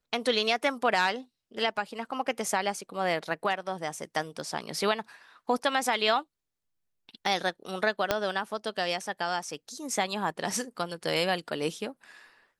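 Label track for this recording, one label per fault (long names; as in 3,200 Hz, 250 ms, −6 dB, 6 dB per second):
8.110000	8.110000	click −9 dBFS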